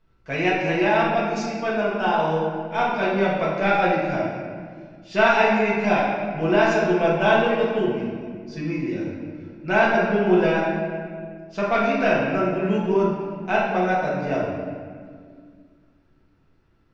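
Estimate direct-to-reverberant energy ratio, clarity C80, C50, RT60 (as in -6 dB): -7.5 dB, 2.5 dB, 0.0 dB, 1.9 s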